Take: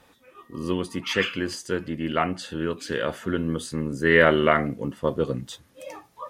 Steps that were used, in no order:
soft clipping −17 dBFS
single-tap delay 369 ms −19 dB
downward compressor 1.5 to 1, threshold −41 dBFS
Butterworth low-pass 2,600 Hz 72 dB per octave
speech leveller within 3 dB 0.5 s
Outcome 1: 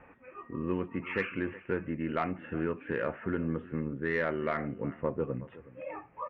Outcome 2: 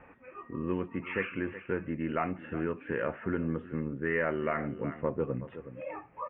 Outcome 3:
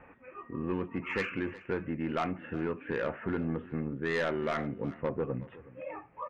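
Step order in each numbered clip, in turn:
downward compressor, then Butterworth low-pass, then speech leveller, then single-tap delay, then soft clipping
single-tap delay, then speech leveller, then downward compressor, then soft clipping, then Butterworth low-pass
Butterworth low-pass, then speech leveller, then soft clipping, then downward compressor, then single-tap delay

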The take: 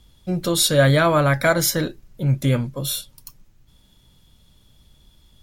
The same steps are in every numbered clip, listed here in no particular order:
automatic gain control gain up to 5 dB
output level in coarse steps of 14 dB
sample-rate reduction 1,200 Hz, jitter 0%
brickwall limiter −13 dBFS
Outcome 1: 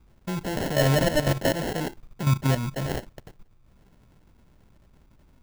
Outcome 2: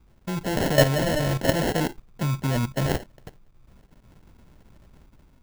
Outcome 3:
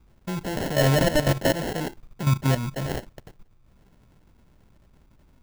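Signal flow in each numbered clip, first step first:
automatic gain control, then output level in coarse steps, then brickwall limiter, then sample-rate reduction
output level in coarse steps, then sample-rate reduction, then brickwall limiter, then automatic gain control
automatic gain control, then output level in coarse steps, then sample-rate reduction, then brickwall limiter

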